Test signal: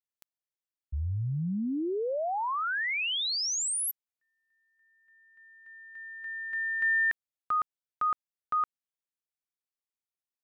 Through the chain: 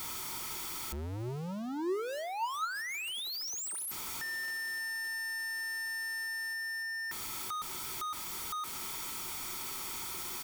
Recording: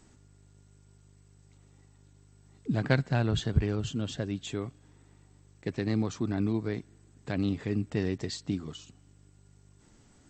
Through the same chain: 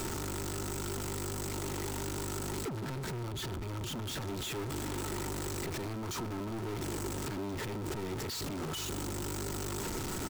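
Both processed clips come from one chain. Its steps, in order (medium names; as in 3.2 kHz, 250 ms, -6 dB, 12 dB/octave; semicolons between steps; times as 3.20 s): jump at every zero crossing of -29.5 dBFS; comb 0.9 ms, depth 43%; compression, threshold -33 dBFS; waveshaping leveller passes 3; peak limiter -31 dBFS; hard clipper -38 dBFS; small resonant body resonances 370/920/1300 Hz, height 9 dB, ringing for 45 ms; on a send: feedback echo behind a low-pass 76 ms, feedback 56%, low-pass 2.8 kHz, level -22 dB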